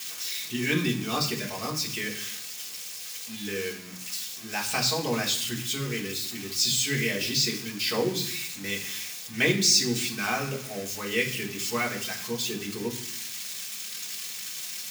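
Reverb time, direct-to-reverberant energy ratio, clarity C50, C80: 0.65 s, -2.0 dB, 9.5 dB, 13.0 dB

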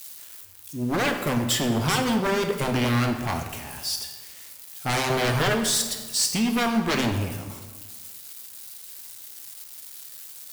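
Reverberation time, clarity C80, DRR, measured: 1.4 s, 8.5 dB, 4.5 dB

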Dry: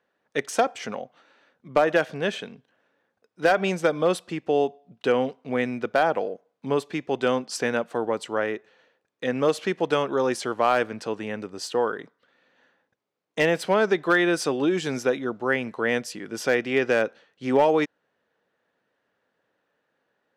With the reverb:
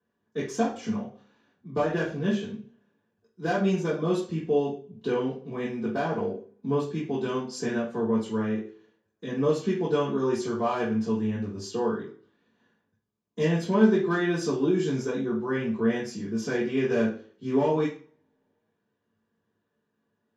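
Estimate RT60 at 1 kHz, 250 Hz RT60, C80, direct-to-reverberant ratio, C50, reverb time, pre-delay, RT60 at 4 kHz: 0.45 s, 0.55 s, 11.0 dB, -8.5 dB, 6.0 dB, 0.45 s, 3 ms, 0.40 s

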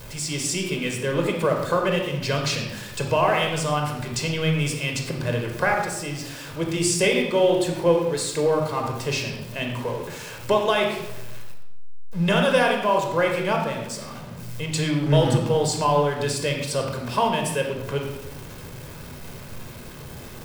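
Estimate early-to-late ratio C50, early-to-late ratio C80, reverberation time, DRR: 4.5 dB, 6.5 dB, 0.90 s, 2.0 dB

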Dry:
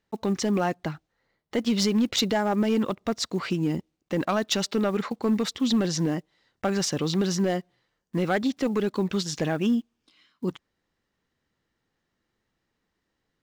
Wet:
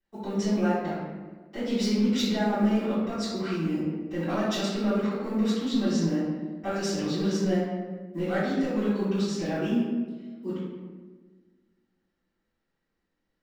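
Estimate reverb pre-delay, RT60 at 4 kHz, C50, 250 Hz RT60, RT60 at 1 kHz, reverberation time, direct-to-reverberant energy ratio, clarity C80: 3 ms, 0.80 s, -1.5 dB, 2.0 s, 1.3 s, 1.4 s, -19.0 dB, 1.5 dB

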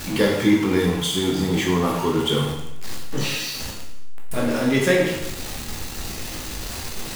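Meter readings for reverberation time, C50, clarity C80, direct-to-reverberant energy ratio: 0.90 s, 3.5 dB, 6.0 dB, -1.5 dB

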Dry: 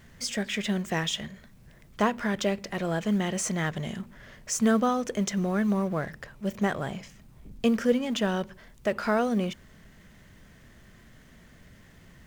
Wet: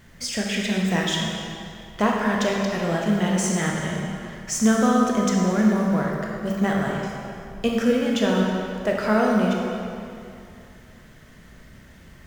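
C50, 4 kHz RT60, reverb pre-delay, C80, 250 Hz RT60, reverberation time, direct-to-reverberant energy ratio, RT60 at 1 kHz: 0.0 dB, 2.0 s, 20 ms, 1.5 dB, 2.4 s, 2.6 s, -1.5 dB, 2.6 s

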